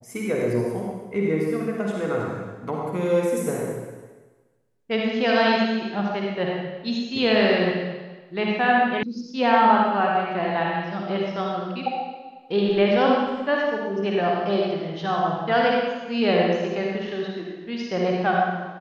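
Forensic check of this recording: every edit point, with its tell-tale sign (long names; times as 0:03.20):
0:09.03: cut off before it has died away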